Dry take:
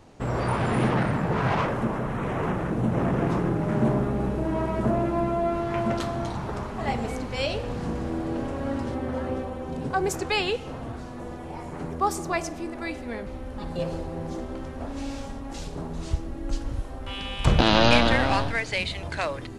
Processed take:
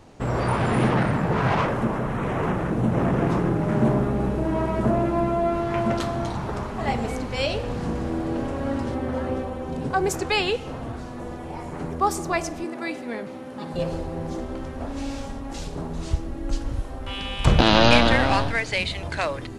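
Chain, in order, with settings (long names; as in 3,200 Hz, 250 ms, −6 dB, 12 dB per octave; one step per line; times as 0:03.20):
0:12.64–0:13.74: high-pass filter 140 Hz 24 dB per octave
level +2.5 dB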